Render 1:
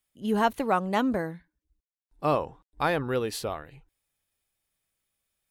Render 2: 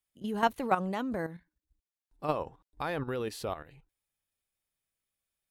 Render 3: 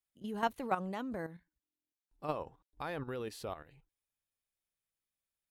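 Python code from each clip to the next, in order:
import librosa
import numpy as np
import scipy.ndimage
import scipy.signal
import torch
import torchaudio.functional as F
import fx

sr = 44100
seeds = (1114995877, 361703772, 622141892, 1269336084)

y1 = fx.level_steps(x, sr, step_db=11)
y2 = fx.buffer_glitch(y1, sr, at_s=(1.62,), block=1024, repeats=12)
y2 = y2 * 10.0 ** (-6.0 / 20.0)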